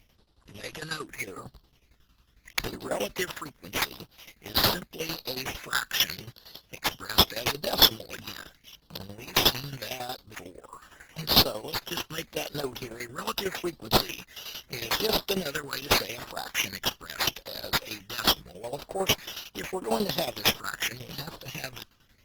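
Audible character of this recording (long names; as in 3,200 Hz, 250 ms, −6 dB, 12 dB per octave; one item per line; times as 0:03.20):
phaser sweep stages 12, 0.81 Hz, lowest notch 650–2,300 Hz
tremolo saw down 11 Hz, depth 80%
aliases and images of a low sample rate 8,700 Hz, jitter 0%
Opus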